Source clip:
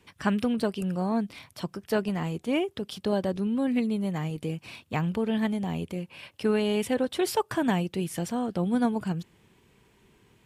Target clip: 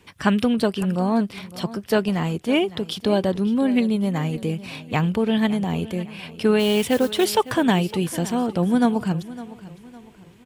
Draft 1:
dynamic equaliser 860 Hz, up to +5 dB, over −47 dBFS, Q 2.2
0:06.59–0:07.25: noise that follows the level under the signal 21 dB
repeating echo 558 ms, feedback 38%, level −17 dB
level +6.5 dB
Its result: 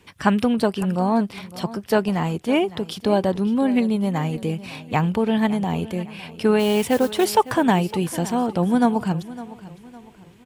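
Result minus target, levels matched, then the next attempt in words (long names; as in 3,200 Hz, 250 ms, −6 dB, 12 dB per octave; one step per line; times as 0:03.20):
1,000 Hz band +3.5 dB
dynamic equaliser 3,400 Hz, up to +5 dB, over −47 dBFS, Q 2.2
0:06.59–0:07.25: noise that follows the level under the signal 21 dB
repeating echo 558 ms, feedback 38%, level −17 dB
level +6.5 dB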